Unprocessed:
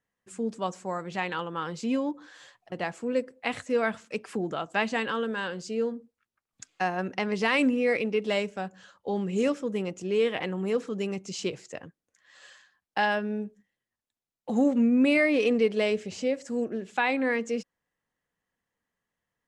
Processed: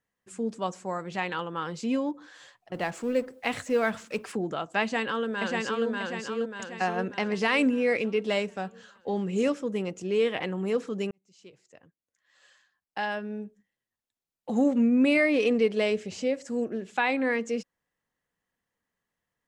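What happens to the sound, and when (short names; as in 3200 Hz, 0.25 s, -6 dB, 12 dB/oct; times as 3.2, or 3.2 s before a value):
2.74–4.32 G.711 law mismatch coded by mu
4.82–5.86 echo throw 0.59 s, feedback 50%, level -1.5 dB
11.11–14.72 fade in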